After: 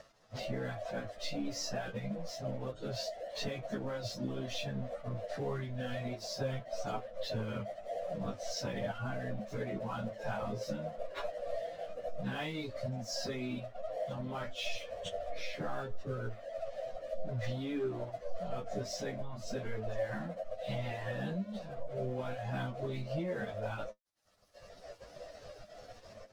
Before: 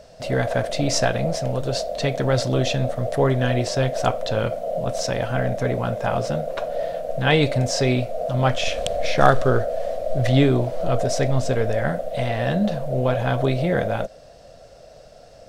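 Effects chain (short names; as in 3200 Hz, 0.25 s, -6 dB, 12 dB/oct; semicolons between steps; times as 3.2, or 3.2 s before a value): reverb removal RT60 1.1 s; LPF 6500 Hz 24 dB/oct; dynamic EQ 210 Hz, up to +6 dB, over -38 dBFS, Q 2.2; AGC gain up to 8 dB; limiter -9.5 dBFS, peak gain reduction 8 dB; compressor 3:1, threshold -32 dBFS, peak gain reduction 14.5 dB; crossover distortion -46.5 dBFS; vibrato 12 Hz 14 cents; plain phase-vocoder stretch 1.7×; flange 0.3 Hz, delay 9 ms, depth 1.4 ms, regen +51%; gain +1 dB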